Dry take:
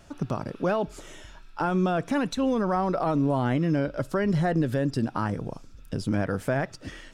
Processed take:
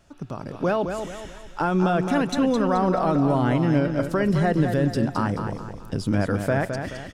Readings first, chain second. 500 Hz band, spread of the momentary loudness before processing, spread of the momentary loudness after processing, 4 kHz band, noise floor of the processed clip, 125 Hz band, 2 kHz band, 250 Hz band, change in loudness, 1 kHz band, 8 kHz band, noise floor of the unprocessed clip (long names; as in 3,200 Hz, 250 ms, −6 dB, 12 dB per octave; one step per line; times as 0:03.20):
+4.0 dB, 11 LU, 12 LU, +4.0 dB, −41 dBFS, +4.0 dB, +4.0 dB, +4.0 dB, +4.0 dB, +4.0 dB, +3.5 dB, −49 dBFS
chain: automatic gain control gain up to 9 dB
on a send: repeating echo 214 ms, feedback 40%, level −7 dB
on the sum: level −6 dB